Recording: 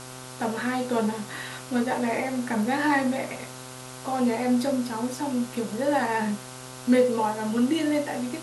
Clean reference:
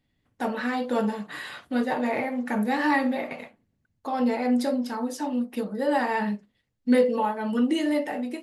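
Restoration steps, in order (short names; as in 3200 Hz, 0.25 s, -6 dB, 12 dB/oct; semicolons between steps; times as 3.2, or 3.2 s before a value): de-hum 128.2 Hz, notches 12; denoiser 30 dB, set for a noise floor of -41 dBFS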